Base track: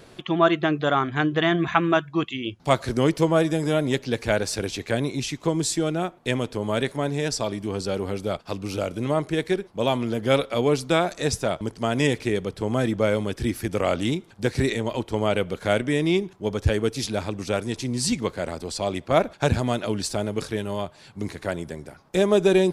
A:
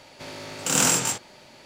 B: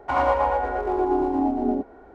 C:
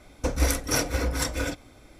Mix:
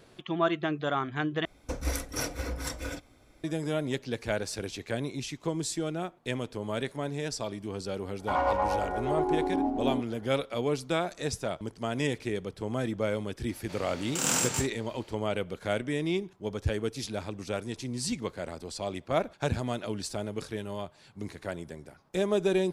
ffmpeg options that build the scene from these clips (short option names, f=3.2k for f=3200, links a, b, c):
-filter_complex "[0:a]volume=-8dB,asplit=2[a][b];[a]atrim=end=1.454[c];[3:a]atrim=end=1.99,asetpts=PTS-STARTPTS,volume=-8dB[d];[b]atrim=start=3.436[e];[2:a]atrim=end=2.14,asetpts=PTS-STARTPTS,volume=-6dB,afade=t=in:d=0.004:c=hsin,afade=t=out:st=2.136:d=0.004:c=hsin,adelay=8190[f];[1:a]atrim=end=1.65,asetpts=PTS-STARTPTS,volume=-7dB,afade=t=in:d=0.004:c=hsin,afade=t=out:st=1.646:d=0.004:c=hsin,adelay=13490[g];[c][d]acrossfade=d=0.004:c1=hsin:c2=hsin[h];[h][e]acrossfade=d=0.004:c1=hsin:c2=hsin[i];[i][f][g]amix=inputs=3:normalize=0"